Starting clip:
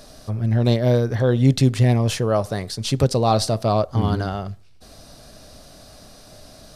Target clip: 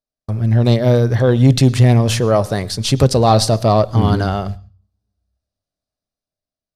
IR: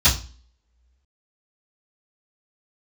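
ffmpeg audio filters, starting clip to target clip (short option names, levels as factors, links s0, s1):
-filter_complex "[0:a]acontrast=41,agate=range=0.00224:threshold=0.0447:ratio=16:detection=peak,asplit=2[s0][s1];[1:a]atrim=start_sample=2205,adelay=101[s2];[s1][s2]afir=irnorm=-1:irlink=0,volume=0.00794[s3];[s0][s3]amix=inputs=2:normalize=0,dynaudnorm=f=310:g=7:m=2.82,volume=0.891"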